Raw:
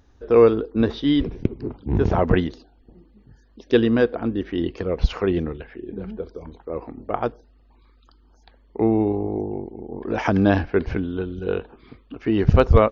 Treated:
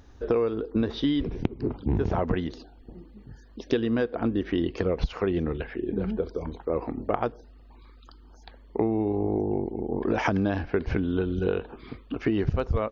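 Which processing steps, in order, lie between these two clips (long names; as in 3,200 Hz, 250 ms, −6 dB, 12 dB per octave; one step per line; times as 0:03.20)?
downward compressor 12 to 1, threshold −26 dBFS, peak gain reduction 18.5 dB
level +4.5 dB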